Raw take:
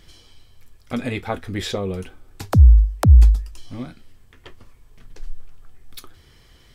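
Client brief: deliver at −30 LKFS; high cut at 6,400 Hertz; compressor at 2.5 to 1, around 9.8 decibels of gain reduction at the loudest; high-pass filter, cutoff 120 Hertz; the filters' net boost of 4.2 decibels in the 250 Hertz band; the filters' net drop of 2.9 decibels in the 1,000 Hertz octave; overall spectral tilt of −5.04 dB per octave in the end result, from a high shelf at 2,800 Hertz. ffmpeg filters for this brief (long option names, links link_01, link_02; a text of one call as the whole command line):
ffmpeg -i in.wav -af "highpass=120,lowpass=6400,equalizer=frequency=250:width_type=o:gain=6,equalizer=frequency=1000:width_type=o:gain=-5.5,highshelf=frequency=2800:gain=7.5,acompressor=threshold=-28dB:ratio=2.5,volume=2dB" out.wav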